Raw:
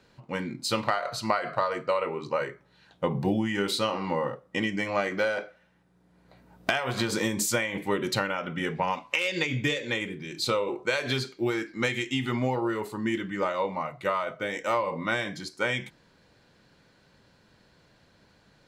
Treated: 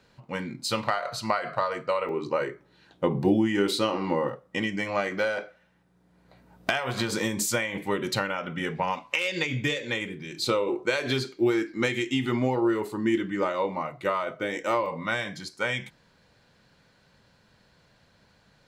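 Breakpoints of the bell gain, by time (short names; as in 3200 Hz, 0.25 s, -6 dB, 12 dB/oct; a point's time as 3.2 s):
bell 330 Hz 0.69 oct
-3 dB
from 2.09 s +8 dB
from 4.29 s -1 dB
from 10.41 s +6 dB
from 14.86 s -5.5 dB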